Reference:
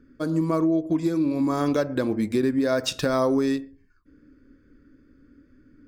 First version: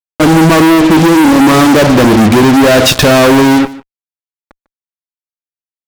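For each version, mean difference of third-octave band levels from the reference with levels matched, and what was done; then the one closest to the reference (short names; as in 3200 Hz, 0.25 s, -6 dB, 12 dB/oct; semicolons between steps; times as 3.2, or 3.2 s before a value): 8.5 dB: LPF 2600 Hz 6 dB/oct; fuzz box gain 45 dB, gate -42 dBFS; on a send: echo 0.149 s -19.5 dB; on the sum: gain +8.5 dB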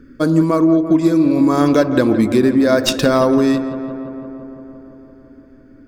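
3.5 dB: tracing distortion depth 0.028 ms; vocal rider 0.5 s; on a send: darkening echo 0.17 s, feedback 78%, low-pass 2800 Hz, level -12.5 dB; on the sum: gain +9 dB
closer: second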